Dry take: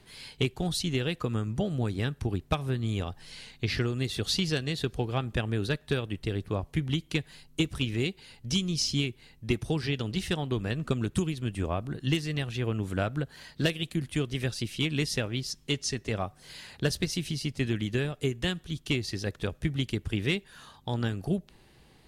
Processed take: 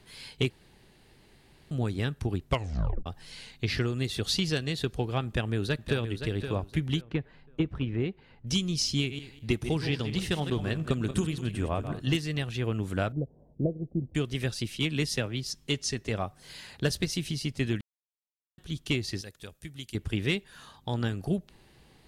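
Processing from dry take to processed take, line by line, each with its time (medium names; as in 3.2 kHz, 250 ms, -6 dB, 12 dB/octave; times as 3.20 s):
0.50–1.71 s: room tone
2.46 s: tape stop 0.60 s
5.26–6.07 s: echo throw 520 ms, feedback 25%, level -8.5 dB
7.01–8.47 s: low-pass 1.6 kHz
8.99–12.16 s: backward echo that repeats 101 ms, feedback 40%, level -9 dB
13.12–14.15 s: steep low-pass 670 Hz
14.77–15.46 s: three bands expanded up and down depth 40%
17.81–18.58 s: mute
19.21–19.95 s: pre-emphasis filter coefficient 0.8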